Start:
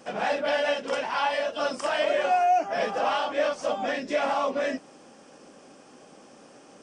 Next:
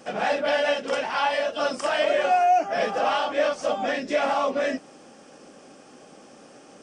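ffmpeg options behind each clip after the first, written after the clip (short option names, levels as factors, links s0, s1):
-af "bandreject=f=990:w=14,volume=1.33"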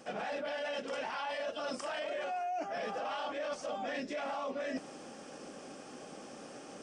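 -af "alimiter=limit=0.1:level=0:latency=1:release=16,areverse,acompressor=threshold=0.0158:ratio=5,areverse"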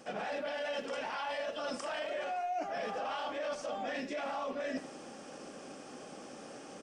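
-filter_complex "[0:a]asplit=2[s0][s1];[s1]adelay=80,highpass=300,lowpass=3400,asoftclip=type=hard:threshold=0.0158,volume=0.355[s2];[s0][s2]amix=inputs=2:normalize=0"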